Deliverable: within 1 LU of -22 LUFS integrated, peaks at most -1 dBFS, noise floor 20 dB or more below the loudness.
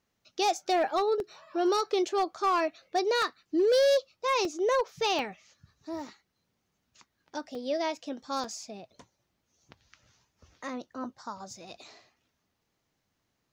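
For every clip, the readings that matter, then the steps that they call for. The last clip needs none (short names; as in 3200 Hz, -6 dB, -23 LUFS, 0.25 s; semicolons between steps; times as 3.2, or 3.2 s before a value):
clipped 0.9%; flat tops at -20.0 dBFS; dropouts 6; longest dropout 1.6 ms; loudness -29.0 LUFS; peak -20.0 dBFS; loudness target -22.0 LUFS
-> clip repair -20 dBFS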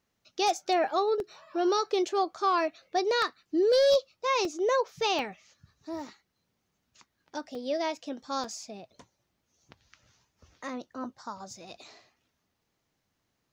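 clipped 0.0%; dropouts 6; longest dropout 1.6 ms
-> interpolate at 1.2/3.22/4.45/5.19/7.55/8.44, 1.6 ms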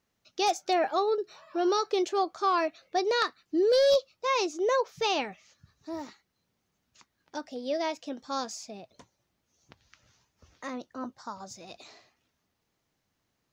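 dropouts 0; loudness -29.0 LUFS; peak -13.0 dBFS; loudness target -22.0 LUFS
-> gain +7 dB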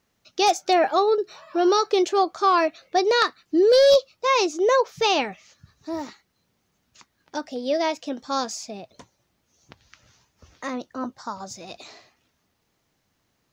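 loudness -22.0 LUFS; peak -6.0 dBFS; noise floor -72 dBFS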